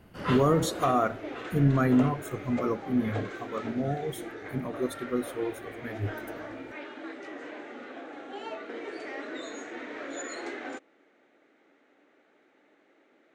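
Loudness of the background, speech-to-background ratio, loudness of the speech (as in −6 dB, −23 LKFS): −39.5 LKFS, 10.5 dB, −29.0 LKFS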